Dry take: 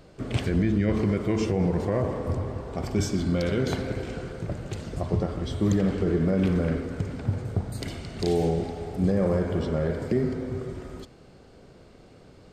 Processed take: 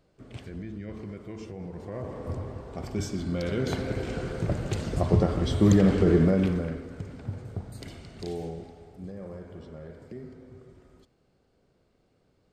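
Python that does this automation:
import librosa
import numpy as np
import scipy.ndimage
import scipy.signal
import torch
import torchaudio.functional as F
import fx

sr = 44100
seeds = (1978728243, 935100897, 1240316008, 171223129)

y = fx.gain(x, sr, db=fx.line((1.7, -15.0), (2.3, -5.5), (3.26, -5.5), (4.44, 4.0), (6.2, 4.0), (6.75, -8.0), (8.06, -8.0), (9.07, -17.0)))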